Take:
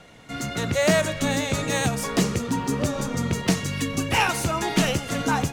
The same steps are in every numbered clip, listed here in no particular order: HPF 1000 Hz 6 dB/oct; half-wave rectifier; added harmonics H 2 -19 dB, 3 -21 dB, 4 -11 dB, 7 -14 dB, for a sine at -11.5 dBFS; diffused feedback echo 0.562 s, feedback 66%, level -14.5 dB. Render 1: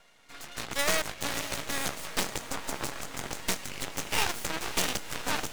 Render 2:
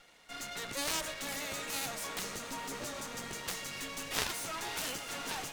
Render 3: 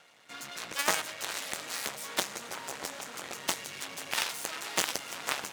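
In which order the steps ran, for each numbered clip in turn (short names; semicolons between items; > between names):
added harmonics > HPF > half-wave rectifier > diffused feedback echo; HPF > half-wave rectifier > diffused feedback echo > added harmonics; diffused feedback echo > half-wave rectifier > added harmonics > HPF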